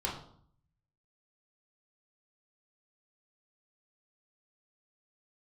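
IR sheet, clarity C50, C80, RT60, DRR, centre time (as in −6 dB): 6.0 dB, 9.5 dB, 0.60 s, −5.5 dB, 33 ms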